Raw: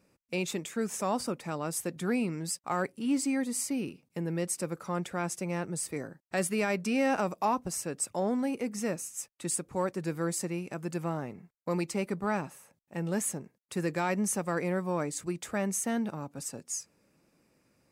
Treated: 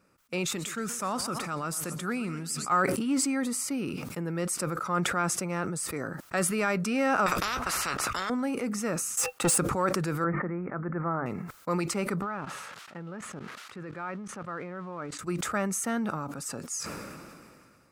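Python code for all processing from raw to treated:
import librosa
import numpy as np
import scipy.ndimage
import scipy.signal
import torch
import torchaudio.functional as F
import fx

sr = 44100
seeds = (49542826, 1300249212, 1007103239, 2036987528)

y = fx.chain(x, sr, fx.peak_eq(hz=550.0, db=-5.5, octaves=3.0),
    fx.echo_warbled(ms=125, feedback_pct=56, rate_hz=2.8, cents=158, wet_db=-17), at=(0.45, 2.72))
y = fx.chain(y, sr, fx.lowpass(hz=1600.0, slope=6),
    fx.doubler(ms=16.0, db=-13),
    fx.spectral_comp(ratio=10.0), at=(7.26, 8.3))
y = fx.chain(y, sr, fx.leveller(passes=3),
    fx.small_body(hz=(500.0, 790.0, 2700.0), ring_ms=70, db=14), at=(9.17, 9.58))
y = fx.chain(y, sr, fx.steep_lowpass(hz=2100.0, slope=72),
    fx.hum_notches(base_hz=50, count=6), at=(10.24, 11.26))
y = fx.chain(y, sr, fx.crossing_spikes(level_db=-32.5),
    fx.lowpass(hz=2600.0, slope=12),
    fx.level_steps(step_db=20), at=(12.22, 15.19))
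y = fx.peak_eq(y, sr, hz=1300.0, db=12.0, octaves=0.48)
y = fx.sustainer(y, sr, db_per_s=27.0)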